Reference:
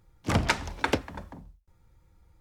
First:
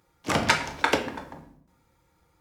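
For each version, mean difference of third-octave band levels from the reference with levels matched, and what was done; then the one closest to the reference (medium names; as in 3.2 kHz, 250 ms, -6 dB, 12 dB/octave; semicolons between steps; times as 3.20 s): 4.5 dB: high-pass 400 Hz 6 dB/octave; simulated room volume 120 m³, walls mixed, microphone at 0.49 m; trim +4 dB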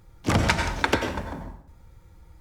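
6.5 dB: compression 2:1, threshold -31 dBFS, peak gain reduction 7 dB; plate-style reverb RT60 0.64 s, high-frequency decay 0.75×, pre-delay 80 ms, DRR 4.5 dB; trim +8.5 dB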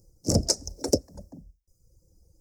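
10.5 dB: reverb removal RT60 0.99 s; FFT filter 140 Hz 0 dB, 580 Hz +4 dB, 980 Hz -20 dB, 2 kHz -25 dB, 3.4 kHz -27 dB, 5.2 kHz +13 dB, 11 kHz +7 dB; trim +2 dB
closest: first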